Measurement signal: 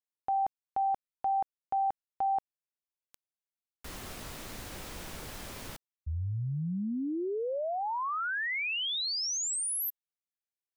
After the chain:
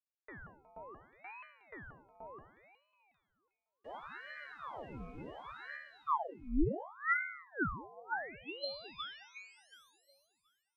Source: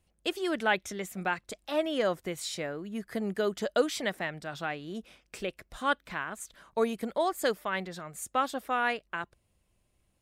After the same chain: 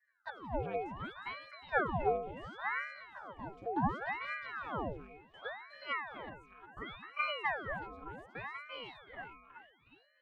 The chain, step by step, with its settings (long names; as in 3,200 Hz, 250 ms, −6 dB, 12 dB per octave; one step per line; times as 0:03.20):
resonances in every octave D, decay 0.65 s
delay with a high-pass on its return 364 ms, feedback 38%, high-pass 1,400 Hz, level −3 dB
ring modulator whose carrier an LFO sweeps 950 Hz, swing 90%, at 0.69 Hz
level +15 dB